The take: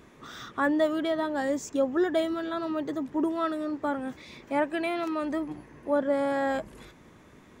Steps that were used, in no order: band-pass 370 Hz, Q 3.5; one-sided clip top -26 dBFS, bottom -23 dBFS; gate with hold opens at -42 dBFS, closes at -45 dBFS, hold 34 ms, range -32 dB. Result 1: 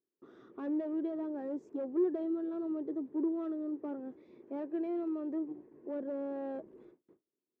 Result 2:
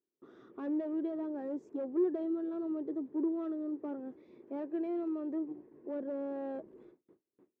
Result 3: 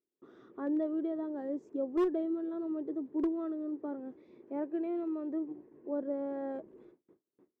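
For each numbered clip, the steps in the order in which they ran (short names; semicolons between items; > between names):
one-sided clip > gate with hold > band-pass; gate with hold > one-sided clip > band-pass; gate with hold > band-pass > one-sided clip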